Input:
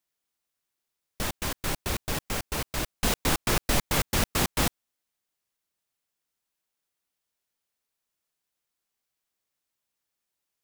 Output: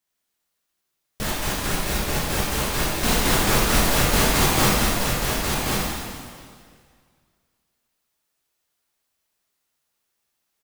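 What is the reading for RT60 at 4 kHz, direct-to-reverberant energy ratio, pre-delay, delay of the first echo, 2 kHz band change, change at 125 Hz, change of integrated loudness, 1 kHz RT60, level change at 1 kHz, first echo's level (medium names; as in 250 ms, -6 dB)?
1.9 s, -8.0 dB, 5 ms, 1087 ms, +8.5 dB, +8.0 dB, +7.0 dB, 2.0 s, +9.0 dB, -4.0 dB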